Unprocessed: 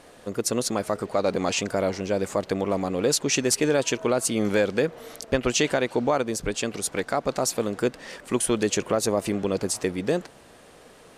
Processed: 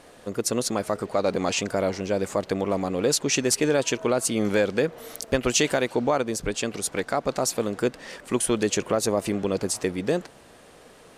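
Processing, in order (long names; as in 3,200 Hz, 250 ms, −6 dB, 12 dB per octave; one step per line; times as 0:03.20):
0:04.98–0:05.92: high-shelf EQ 9,400 Hz +11 dB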